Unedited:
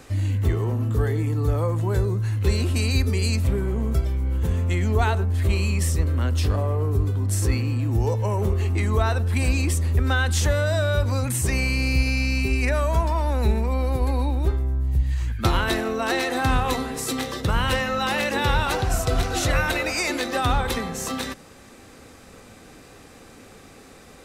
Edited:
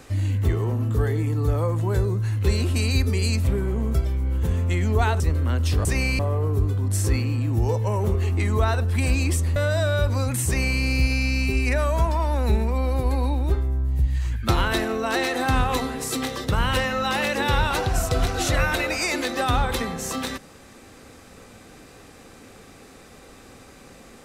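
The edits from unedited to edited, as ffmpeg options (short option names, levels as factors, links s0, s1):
-filter_complex "[0:a]asplit=5[s0][s1][s2][s3][s4];[s0]atrim=end=5.202[s5];[s1]atrim=start=5.918:end=6.572[s6];[s2]atrim=start=11.418:end=11.762[s7];[s3]atrim=start=6.568:end=9.942[s8];[s4]atrim=start=10.518[s9];[s5][s6]acrossfade=d=0.004:c1=hsin:c2=hsin[s10];[s10][s7]acrossfade=d=0.004:c1=hsin:c2=hsin[s11];[s11][s8]acrossfade=d=0.004:c1=hsin:c2=hsin[s12];[s12][s9]acrossfade=d=0.004:c1=hsin:c2=hsin"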